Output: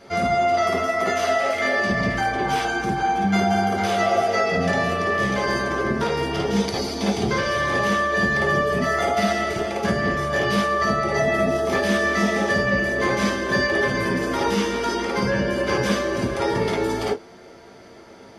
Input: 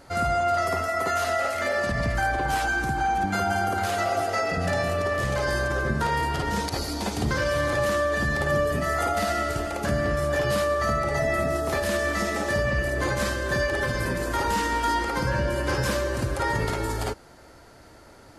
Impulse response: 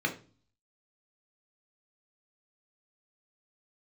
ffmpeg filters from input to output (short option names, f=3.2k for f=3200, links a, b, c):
-filter_complex "[1:a]atrim=start_sample=2205,atrim=end_sample=3528,asetrate=61740,aresample=44100[a];[0:a][a]afir=irnorm=-1:irlink=0"